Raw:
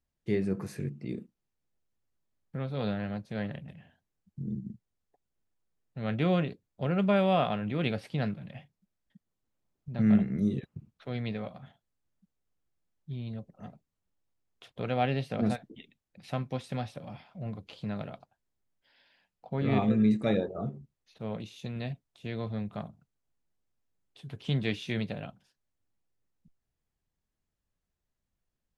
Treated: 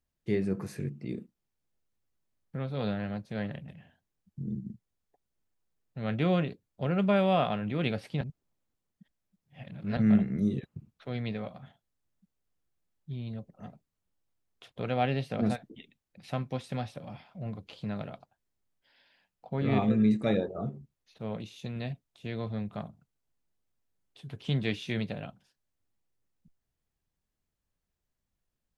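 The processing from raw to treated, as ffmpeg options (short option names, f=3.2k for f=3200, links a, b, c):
-filter_complex "[0:a]asplit=3[a][b][c];[a]atrim=end=8.212[d];[b]atrim=start=8.208:end=9.972,asetpts=PTS-STARTPTS,areverse[e];[c]atrim=start=9.968[f];[d][e]acrossfade=d=0.004:c1=hsin:c2=hsin[g];[g][f]acrossfade=d=0.004:c1=hsin:c2=hsin"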